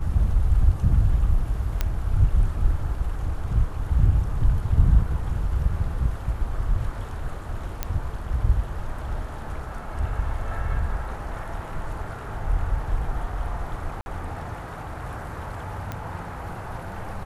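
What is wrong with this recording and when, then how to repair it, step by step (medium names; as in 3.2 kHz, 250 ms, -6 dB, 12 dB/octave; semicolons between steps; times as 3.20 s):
1.81 s: pop -10 dBFS
7.83 s: pop -10 dBFS
14.01–14.06 s: dropout 51 ms
15.92 s: pop -17 dBFS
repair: de-click; interpolate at 14.01 s, 51 ms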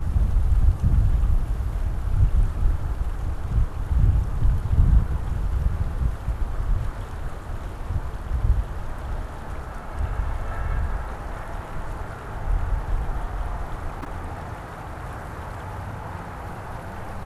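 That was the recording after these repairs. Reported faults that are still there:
1.81 s: pop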